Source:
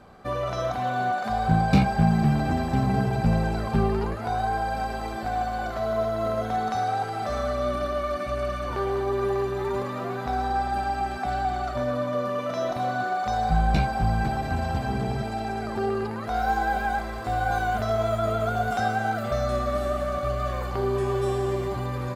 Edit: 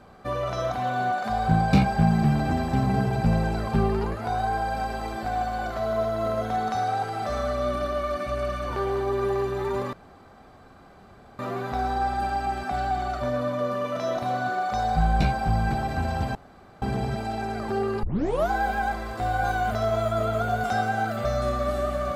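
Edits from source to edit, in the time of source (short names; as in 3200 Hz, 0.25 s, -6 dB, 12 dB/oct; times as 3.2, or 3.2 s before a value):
9.93 insert room tone 1.46 s
14.89 insert room tone 0.47 s
16.1 tape start 0.48 s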